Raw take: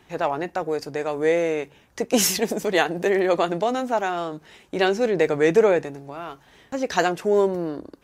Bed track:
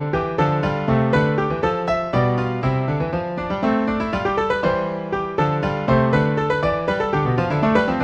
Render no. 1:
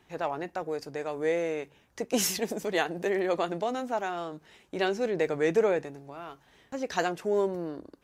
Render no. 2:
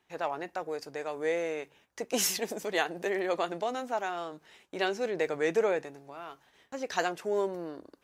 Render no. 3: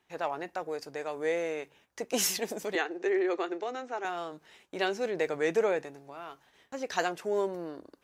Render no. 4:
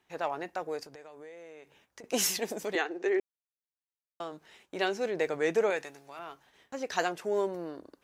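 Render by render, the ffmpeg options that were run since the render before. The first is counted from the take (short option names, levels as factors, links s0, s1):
-af "volume=0.422"
-af "agate=range=0.398:threshold=0.00112:ratio=16:detection=peak,lowshelf=f=280:g=-10"
-filter_complex "[0:a]asettb=1/sr,asplit=3[s0][s1][s2];[s0]atrim=end=2.754[s3];[s1]atrim=start=2.75:end=4.05,asetpts=PTS-STARTPTS,afade=t=in:d=0.004:c=qsin,afade=t=out:st=1.296:d=0.004:c=qsin,highpass=f=290:w=0.5412,highpass=f=290:w=1.3066,equalizer=f=370:t=q:w=4:g=7,equalizer=f=610:t=q:w=4:g=-9,equalizer=f=980:t=q:w=4:g=-5,equalizer=f=3200:t=q:w=4:g=-6,equalizer=f=4700:t=q:w=4:g=-7,lowpass=f=6200:w=0.5412,lowpass=f=6200:w=1.3066[s4];[s2]atrim=start=4.046[s5];[s3][s4]acrossfade=d=0.004:c1=hsin:c2=qsin[s6];[s6][s5]acrossfade=d=0.004:c1=qsin:c2=hsin"
-filter_complex "[0:a]asettb=1/sr,asplit=3[s0][s1][s2];[s0]atrim=end=0.834[s3];[s1]atrim=start=0.83:end=2.04,asetpts=PTS-STARTPTS,afade=t=in:d=0.004:c=qsin,afade=t=out:st=1.206:d=0.004:c=qsin,acompressor=threshold=0.00501:ratio=6:attack=3.2:release=140:knee=1:detection=peak[s4];[s2]atrim=start=2.036[s5];[s3][s4]acrossfade=d=0.004:c1=hsin:c2=qsin[s6];[s6][s5]acrossfade=d=0.004:c1=qsin:c2=hsin,asettb=1/sr,asplit=3[s7][s8][s9];[s7]atrim=end=5.704[s10];[s8]atrim=start=5.7:end=6.19,asetpts=PTS-STARTPTS,afade=t=in:d=0.004:c=qsin,afade=t=out:st=0.486:d=0.004:c=qsin,tiltshelf=f=940:g=-6.5[s11];[s9]atrim=start=6.186[s12];[s10][s11]acrossfade=d=0.004:c1=hsin:c2=qsin[s13];[s13][s12]acrossfade=d=0.004:c1=qsin:c2=hsin,asplit=3[s14][s15][s16];[s14]atrim=end=3.2,asetpts=PTS-STARTPTS,afade=t=out:st=3.196:d=0.004:c=hsin[s17];[s15]atrim=start=3.2:end=4.2,asetpts=PTS-STARTPTS,volume=0[s18];[s16]atrim=start=4.2,asetpts=PTS-STARTPTS,afade=t=in:d=0.004:c=hsin[s19];[s17][s18][s19]concat=n=3:v=0:a=1"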